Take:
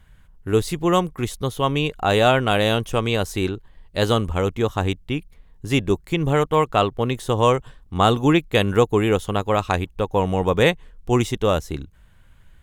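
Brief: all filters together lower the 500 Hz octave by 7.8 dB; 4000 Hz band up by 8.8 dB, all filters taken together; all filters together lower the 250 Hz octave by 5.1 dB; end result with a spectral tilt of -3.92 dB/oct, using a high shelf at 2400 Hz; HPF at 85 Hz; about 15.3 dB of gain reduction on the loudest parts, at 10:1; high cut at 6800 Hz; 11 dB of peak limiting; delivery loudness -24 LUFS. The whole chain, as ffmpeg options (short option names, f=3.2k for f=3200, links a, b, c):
-af "highpass=85,lowpass=6.8k,equalizer=f=250:t=o:g=-4,equalizer=f=500:t=o:g=-9,highshelf=f=2.4k:g=8.5,equalizer=f=4k:t=o:g=4.5,acompressor=threshold=-27dB:ratio=10,volume=11dB,alimiter=limit=-11dB:level=0:latency=1"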